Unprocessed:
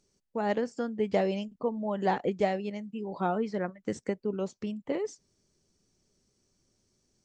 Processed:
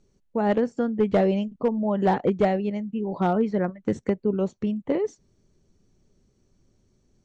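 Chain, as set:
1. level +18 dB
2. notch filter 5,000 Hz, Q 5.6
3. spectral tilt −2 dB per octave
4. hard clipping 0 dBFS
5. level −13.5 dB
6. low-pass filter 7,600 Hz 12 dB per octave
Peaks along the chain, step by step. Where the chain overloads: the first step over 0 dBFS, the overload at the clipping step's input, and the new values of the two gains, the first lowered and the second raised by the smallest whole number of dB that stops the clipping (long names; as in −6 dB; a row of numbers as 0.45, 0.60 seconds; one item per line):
+4.5, +4.5, +6.0, 0.0, −13.5, −13.5 dBFS
step 1, 6.0 dB
step 1 +12 dB, step 5 −7.5 dB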